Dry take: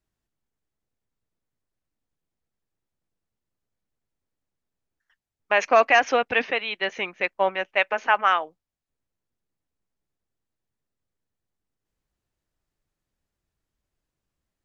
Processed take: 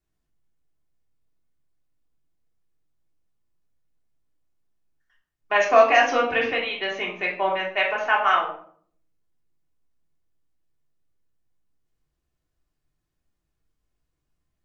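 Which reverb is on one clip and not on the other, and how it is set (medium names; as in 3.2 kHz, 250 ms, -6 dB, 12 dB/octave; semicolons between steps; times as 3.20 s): simulated room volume 670 m³, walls furnished, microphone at 3.3 m; trim -4 dB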